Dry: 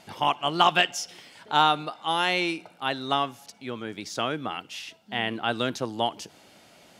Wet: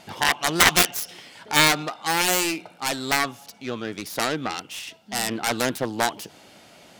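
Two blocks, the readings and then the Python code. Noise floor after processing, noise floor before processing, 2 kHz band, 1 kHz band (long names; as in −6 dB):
−51 dBFS, −55 dBFS, +6.5 dB, −1.0 dB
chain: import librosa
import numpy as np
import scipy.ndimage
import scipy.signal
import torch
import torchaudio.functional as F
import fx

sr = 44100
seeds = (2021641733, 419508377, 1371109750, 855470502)

y = fx.self_delay(x, sr, depth_ms=0.62)
y = y * librosa.db_to_amplitude(4.5)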